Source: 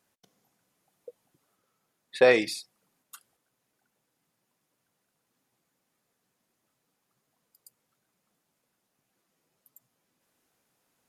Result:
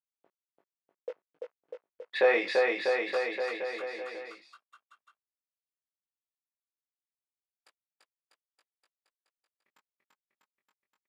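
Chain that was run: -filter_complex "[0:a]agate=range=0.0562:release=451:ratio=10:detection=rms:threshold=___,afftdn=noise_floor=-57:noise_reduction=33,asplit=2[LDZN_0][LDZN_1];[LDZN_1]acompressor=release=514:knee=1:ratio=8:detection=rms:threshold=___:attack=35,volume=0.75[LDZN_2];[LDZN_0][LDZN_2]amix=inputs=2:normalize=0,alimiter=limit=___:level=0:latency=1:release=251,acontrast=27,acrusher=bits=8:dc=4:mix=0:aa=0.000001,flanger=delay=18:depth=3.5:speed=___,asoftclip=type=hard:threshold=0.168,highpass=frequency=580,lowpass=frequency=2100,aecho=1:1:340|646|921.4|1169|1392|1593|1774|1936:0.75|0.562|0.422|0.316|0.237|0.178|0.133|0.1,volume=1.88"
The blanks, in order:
0.00141, 0.0251, 0.158, 0.67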